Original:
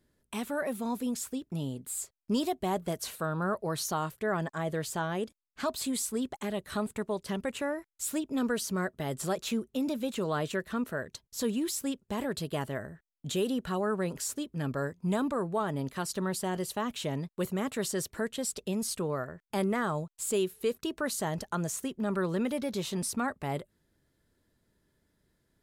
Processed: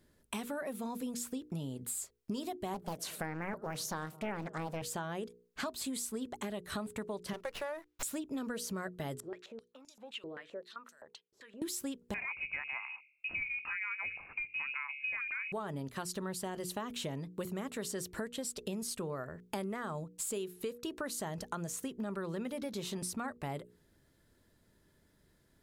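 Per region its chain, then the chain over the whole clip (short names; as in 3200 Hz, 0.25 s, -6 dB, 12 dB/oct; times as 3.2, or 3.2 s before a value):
2.74–4.82 HPF 94 Hz 24 dB/oct + darkening echo 0.103 s, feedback 82%, low-pass 1100 Hz, level -23.5 dB + Doppler distortion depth 0.91 ms
7.33–8.03 HPF 400 Hz 24 dB/oct + running maximum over 5 samples
9.2–11.62 compressor 5:1, threshold -35 dBFS + stepped band-pass 7.7 Hz 370–6400 Hz
12.14–15.52 de-hum 46.89 Hz, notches 13 + inverted band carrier 2700 Hz
whole clip: notches 60/120/180/240/300/360/420/480 Hz; compressor 6:1, threshold -41 dBFS; gain +4.5 dB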